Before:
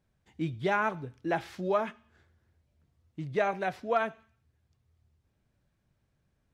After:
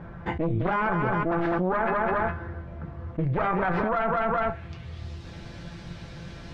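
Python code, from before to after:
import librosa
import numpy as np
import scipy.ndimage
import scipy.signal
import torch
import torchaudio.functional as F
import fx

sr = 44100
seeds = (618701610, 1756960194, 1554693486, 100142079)

y = fx.comb_fb(x, sr, f0_hz=170.0, decay_s=0.18, harmonics='all', damping=0.0, mix_pct=80)
y = fx.cheby_harmonics(y, sr, harmonics=(5, 6), levels_db=(-24, -8), full_scale_db=-21.0)
y = fx.filter_sweep_lowpass(y, sr, from_hz=1300.0, to_hz=4600.0, start_s=4.19, end_s=5.12, q=1.5)
y = fx.echo_feedback(y, sr, ms=206, feedback_pct=25, wet_db=-16)
y = fx.env_flatten(y, sr, amount_pct=100)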